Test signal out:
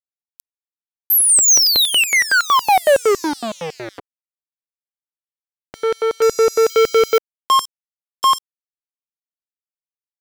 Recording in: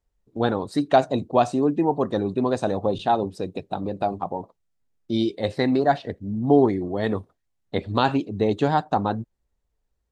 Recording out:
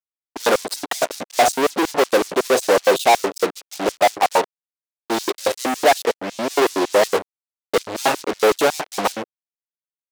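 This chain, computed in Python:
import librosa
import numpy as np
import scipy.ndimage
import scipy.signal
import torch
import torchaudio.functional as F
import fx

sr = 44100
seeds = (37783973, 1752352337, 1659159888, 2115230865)

y = fx.fuzz(x, sr, gain_db=43.0, gate_db=-40.0)
y = fx.filter_lfo_highpass(y, sr, shape='square', hz=5.4, low_hz=460.0, high_hz=5600.0, q=1.2)
y = fx.upward_expand(y, sr, threshold_db=-24.0, expansion=1.5)
y = y * 10.0 ** (2.0 / 20.0)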